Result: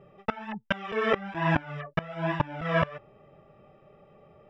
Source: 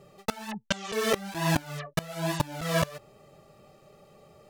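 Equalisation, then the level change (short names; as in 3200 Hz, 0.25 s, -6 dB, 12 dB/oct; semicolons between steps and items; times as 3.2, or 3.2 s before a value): dynamic EQ 1500 Hz, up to +5 dB, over -40 dBFS, Q 0.74; polynomial smoothing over 25 samples; air absorption 120 m; 0.0 dB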